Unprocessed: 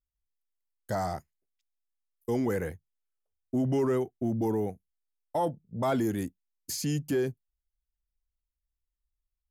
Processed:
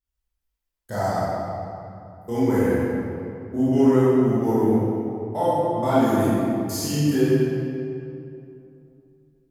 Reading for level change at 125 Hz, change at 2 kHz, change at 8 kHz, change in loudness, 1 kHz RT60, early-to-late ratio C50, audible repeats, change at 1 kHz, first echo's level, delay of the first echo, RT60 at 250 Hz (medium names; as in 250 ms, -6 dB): +9.5 dB, +8.5 dB, +6.0 dB, +9.0 dB, 2.7 s, -5.5 dB, no echo, +9.5 dB, no echo, no echo, 3.0 s